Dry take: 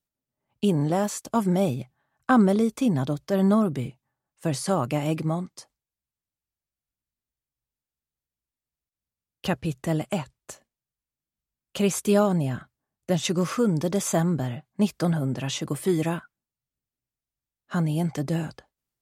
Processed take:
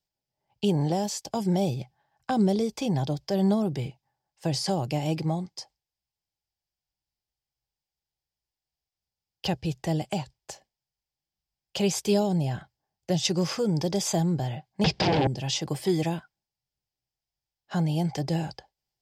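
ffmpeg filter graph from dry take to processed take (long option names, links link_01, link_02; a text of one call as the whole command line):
ffmpeg -i in.wav -filter_complex "[0:a]asettb=1/sr,asplit=3[link_01][link_02][link_03];[link_01]atrim=end=14.844[link_04];[link_02]atrim=start=14.84:end=15.27,asetpts=PTS-STARTPTS,afade=type=in:duration=0.004:curve=qsin,afade=type=out:start_time=0.426:duration=0.004:curve=qsin,aeval=exprs='0.224*sin(PI/2*8.91*val(0)/0.224)':channel_layout=same,highpass=110,lowpass=4100,aemphasis=mode=reproduction:type=75fm[link_05];[link_03]atrim=start=15.266[link_06];[link_04][link_05]acrossfade=duration=0.004:curve1=hsin:curve2=qsin[link_07];[link_07][link_06]acrossfade=duration=0.004:curve1=qsin:curve2=hsin,equalizer=frequency=250:width_type=o:width=0.33:gain=-11,equalizer=frequency=800:width_type=o:width=0.33:gain=9,equalizer=frequency=1250:width_type=o:width=0.33:gain=-10,equalizer=frequency=3150:width_type=o:width=0.33:gain=3,equalizer=frequency=5000:width_type=o:width=0.33:gain=11,equalizer=frequency=10000:width_type=o:width=0.33:gain=-7,acrossover=split=490|3000[link_08][link_09][link_10];[link_09]acompressor=threshold=-34dB:ratio=6[link_11];[link_08][link_11][link_10]amix=inputs=3:normalize=0,highshelf=frequency=12000:gain=-6.5" out.wav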